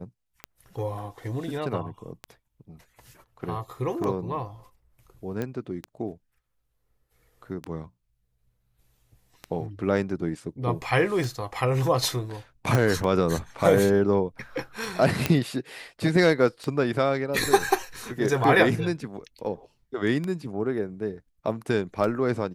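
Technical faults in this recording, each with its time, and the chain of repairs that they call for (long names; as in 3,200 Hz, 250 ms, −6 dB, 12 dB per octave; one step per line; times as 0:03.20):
scratch tick 33 1/3 rpm −18 dBFS
0:05.42: click −17 dBFS
0:12.75: click −11 dBFS
0:15.26: click −7 dBFS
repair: click removal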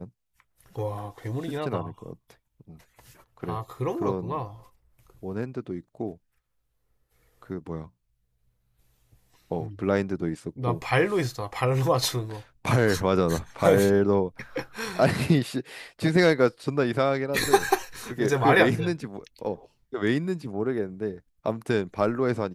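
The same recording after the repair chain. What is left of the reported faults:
0:12.75: click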